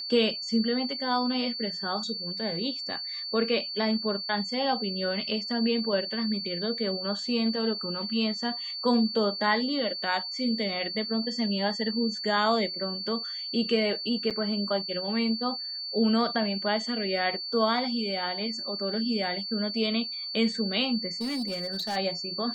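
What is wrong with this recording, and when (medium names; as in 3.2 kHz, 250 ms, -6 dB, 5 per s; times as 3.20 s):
whine 4.5 kHz -33 dBFS
14.30–14.31 s: dropout 7 ms
21.21–21.97 s: clipped -27 dBFS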